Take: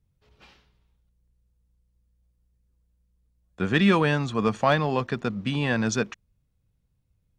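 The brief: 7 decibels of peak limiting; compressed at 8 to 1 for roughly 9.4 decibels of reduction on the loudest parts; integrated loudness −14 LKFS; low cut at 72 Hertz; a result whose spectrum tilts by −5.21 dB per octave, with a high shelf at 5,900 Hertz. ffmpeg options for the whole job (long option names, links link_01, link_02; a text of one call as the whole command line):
ffmpeg -i in.wav -af "highpass=72,highshelf=frequency=5900:gain=-3.5,acompressor=threshold=-25dB:ratio=8,volume=18.5dB,alimiter=limit=-2.5dB:level=0:latency=1" out.wav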